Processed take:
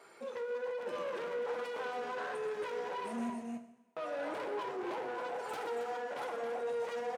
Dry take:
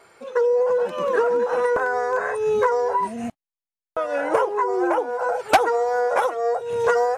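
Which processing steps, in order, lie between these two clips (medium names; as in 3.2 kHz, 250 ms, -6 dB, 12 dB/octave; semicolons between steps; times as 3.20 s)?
one-sided wavefolder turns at -17.5 dBFS; flange 1.3 Hz, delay 6.6 ms, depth 4.6 ms, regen -69%; in parallel at -2.5 dB: compressor with a negative ratio -31 dBFS; on the sum: peak limiter -20.5 dBFS, peak gain reduction 11 dB; on a send: loudspeakers at several distances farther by 42 m -11 dB, 94 m -7 dB; on the sum: saturation -27 dBFS, distortion -12 dB; Chebyshev high-pass 220 Hz, order 2; two-slope reverb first 0.78 s, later 2 s, from -17 dB, DRR 7 dB; trim -8 dB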